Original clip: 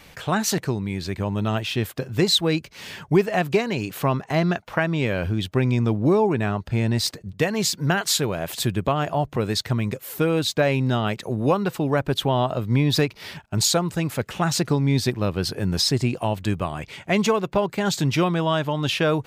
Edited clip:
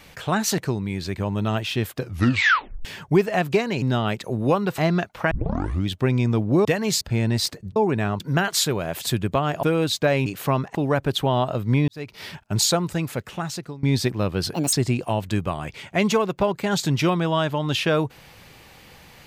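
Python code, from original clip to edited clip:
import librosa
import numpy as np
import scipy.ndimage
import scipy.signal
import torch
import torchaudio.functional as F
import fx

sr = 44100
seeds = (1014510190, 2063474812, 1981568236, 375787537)

y = fx.edit(x, sr, fx.tape_stop(start_s=1.99, length_s=0.86),
    fx.swap(start_s=3.82, length_s=0.49, other_s=10.81, other_length_s=0.96),
    fx.tape_start(start_s=4.84, length_s=0.57),
    fx.swap(start_s=6.18, length_s=0.44, other_s=7.37, other_length_s=0.36),
    fx.cut(start_s=9.16, length_s=1.02),
    fx.fade_in_span(start_s=12.9, length_s=0.26, curve='qua'),
    fx.fade_out_to(start_s=13.9, length_s=0.95, floor_db=-21.0),
    fx.speed_span(start_s=15.56, length_s=0.31, speed=1.65), tone=tone)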